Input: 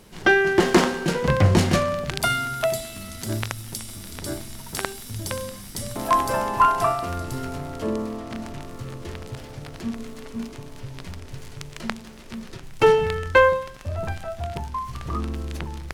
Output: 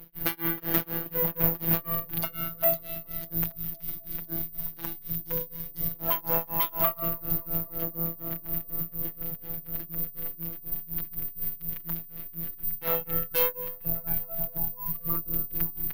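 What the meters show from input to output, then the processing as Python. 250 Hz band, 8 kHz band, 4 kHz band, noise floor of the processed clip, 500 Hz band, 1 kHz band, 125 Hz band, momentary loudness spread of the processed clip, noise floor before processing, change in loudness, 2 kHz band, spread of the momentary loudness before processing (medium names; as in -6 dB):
-10.5 dB, -12.0 dB, -11.5 dB, -47 dBFS, -13.0 dB, -14.5 dB, -10.5 dB, 9 LU, -41 dBFS, -4.5 dB, -17.0 dB, 19 LU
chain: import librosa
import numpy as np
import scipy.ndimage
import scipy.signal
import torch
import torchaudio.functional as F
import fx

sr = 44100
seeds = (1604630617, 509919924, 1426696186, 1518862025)

p1 = fx.octave_divider(x, sr, octaves=1, level_db=-6.0)
p2 = scipy.signal.sosfilt(scipy.signal.butter(2, 4200.0, 'lowpass', fs=sr, output='sos'), p1)
p3 = fx.low_shelf(p2, sr, hz=200.0, db=7.5)
p4 = fx.notch(p3, sr, hz=940.0, q=13.0)
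p5 = fx.fold_sine(p4, sr, drive_db=16, ceiling_db=0.0)
p6 = p4 + (p5 * librosa.db_to_amplitude(-11.5))
p7 = p6 * (1.0 - 0.99 / 2.0 + 0.99 / 2.0 * np.cos(2.0 * np.pi * 4.1 * (np.arange(len(p6)) / sr)))
p8 = fx.robotise(p7, sr, hz=166.0)
p9 = p8 + fx.echo_filtered(p8, sr, ms=273, feedback_pct=81, hz=1300.0, wet_db=-23.0, dry=0)
p10 = (np.kron(scipy.signal.resample_poly(p9, 1, 3), np.eye(3)[0]) * 3)[:len(p9)]
y = p10 * librosa.db_to_amplitude(-14.0)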